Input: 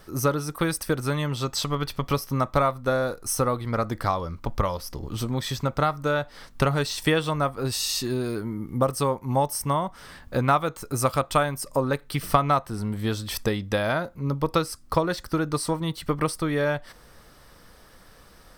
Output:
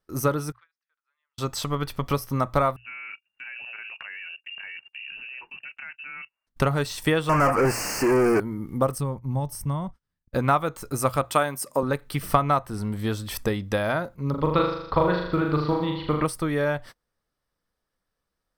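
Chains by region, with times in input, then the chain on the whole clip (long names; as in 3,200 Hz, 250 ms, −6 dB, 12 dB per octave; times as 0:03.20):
0:00.52–0:01.38: four-pole ladder high-pass 1,300 Hz, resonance 20% + head-to-tape spacing loss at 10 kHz 45 dB
0:02.76–0:06.47: mains-hum notches 50/100/150/200/250/300/350/400/450/500 Hz + output level in coarse steps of 19 dB + voice inversion scrambler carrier 2,800 Hz
0:07.29–0:08.40: mid-hump overdrive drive 36 dB, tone 2,500 Hz, clips at −12.5 dBFS + Butterworth band-reject 3,600 Hz, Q 1.5
0:08.98–0:10.35: downward expander −34 dBFS + bass and treble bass +15 dB, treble 0 dB + downward compressor 1.5 to 1, threshold −43 dBFS
0:11.24–0:11.83: high-pass filter 180 Hz + high-shelf EQ 2,800 Hz +3.5 dB
0:14.30–0:16.25: Butterworth low-pass 4,400 Hz 48 dB per octave + flutter between parallel walls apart 6.8 metres, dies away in 0.74 s + floating-point word with a short mantissa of 6 bits
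whole clip: mains-hum notches 60/120 Hz; noise gate −40 dBFS, range −30 dB; dynamic equaliser 4,700 Hz, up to −5 dB, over −43 dBFS, Q 1.1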